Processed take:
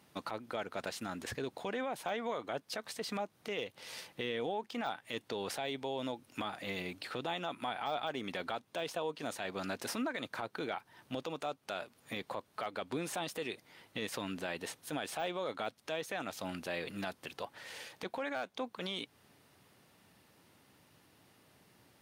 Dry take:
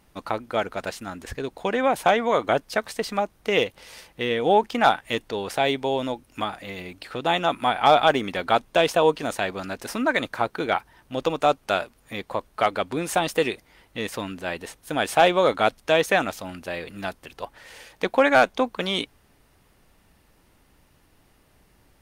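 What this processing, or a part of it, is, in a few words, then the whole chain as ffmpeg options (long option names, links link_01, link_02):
broadcast voice chain: -af "highpass=frequency=100:width=0.5412,highpass=frequency=100:width=1.3066,deesser=0.55,acompressor=threshold=-30dB:ratio=4,equalizer=frequency=3900:width_type=o:width=0.93:gain=3,alimiter=limit=-24dB:level=0:latency=1:release=13,volume=-3.5dB"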